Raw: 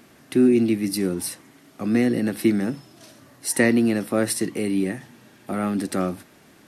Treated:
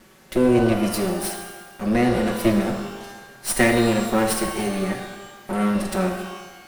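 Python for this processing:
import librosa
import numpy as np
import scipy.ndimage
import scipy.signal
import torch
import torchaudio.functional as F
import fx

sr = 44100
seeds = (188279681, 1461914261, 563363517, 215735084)

y = fx.lower_of_two(x, sr, delay_ms=5.3)
y = fx.rev_shimmer(y, sr, seeds[0], rt60_s=1.2, semitones=12, shimmer_db=-8, drr_db=4.5)
y = y * 10.0 ** (1.5 / 20.0)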